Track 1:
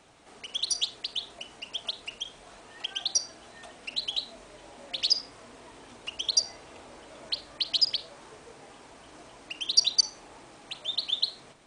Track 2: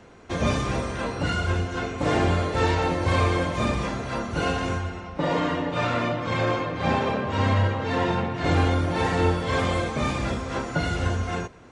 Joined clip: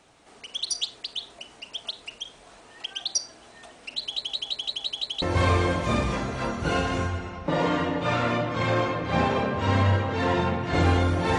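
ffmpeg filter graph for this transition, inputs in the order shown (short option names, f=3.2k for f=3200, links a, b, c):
-filter_complex "[0:a]apad=whole_dur=11.38,atrim=end=11.38,asplit=7[a][b][c][d][e][f][g];[a]atrim=end=4.202[h];[b]atrim=start=4.028:end=4.202[i];[c]atrim=start=4.028:end=4.202[j];[d]atrim=start=4.028:end=4.202[k];[e]atrim=start=4.028:end=4.202[l];[f]atrim=start=4.028:end=4.202[m];[g]atrim=start=4.028:end=4.202[n];[1:a]atrim=start=2.928:end=9.09[o];[h][i]acrossfade=d=0.004:c1=hsin:c2=hsin[p];[p][j]acrossfade=d=0.004:c1=hsin:c2=hsin[q];[q][k]acrossfade=d=0.004:c1=hsin:c2=hsin[r];[r][l]acrossfade=d=0.004:c1=hsin:c2=hsin[s];[s][m]acrossfade=d=0.004:c1=hsin:c2=hsin[t];[t][n]acrossfade=d=0.004:c1=hsin:c2=hsin[u];[u][o]acrossfade=d=0.004:c1=hsin:c2=hsin"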